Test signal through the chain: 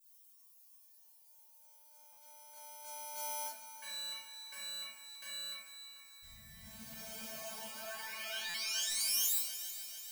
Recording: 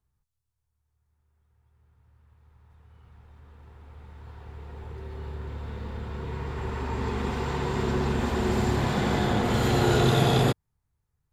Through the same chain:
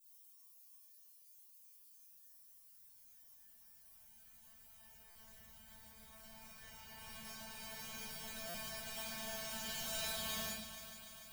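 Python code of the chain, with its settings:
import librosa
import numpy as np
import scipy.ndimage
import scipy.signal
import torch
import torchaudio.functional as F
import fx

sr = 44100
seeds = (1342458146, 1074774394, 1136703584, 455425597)

p1 = fx.cycle_switch(x, sr, every=3, mode='inverted')
p2 = fx.highpass(p1, sr, hz=77.0, slope=6)
p3 = fx.low_shelf(p2, sr, hz=120.0, db=11.5)
p4 = p3 + 0.85 * np.pad(p3, (int(1.3 * sr / 1000.0), 0))[:len(p3)]
p5 = fx.dmg_noise_colour(p4, sr, seeds[0], colour='blue', level_db=-57.0)
p6 = fx.sample_hold(p5, sr, seeds[1], rate_hz=1900.0, jitter_pct=0)
p7 = p5 + (p6 * 10.0 ** (-10.5 / 20.0))
p8 = librosa.effects.preemphasis(p7, coef=0.97, zi=[0.0])
p9 = fx.comb_fb(p8, sr, f0_hz=220.0, decay_s=0.28, harmonics='all', damping=0.0, mix_pct=100)
p10 = p9 + fx.echo_heads(p9, sr, ms=147, heads='second and third', feedback_pct=65, wet_db=-14, dry=0)
p11 = fx.room_shoebox(p10, sr, seeds[2], volume_m3=950.0, walls='furnished', distance_m=5.3)
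p12 = fx.buffer_glitch(p11, sr, at_s=(0.46, 2.12, 5.1, 8.49), block=256, repeats=8)
y = p12 * 10.0 ** (-2.0 / 20.0)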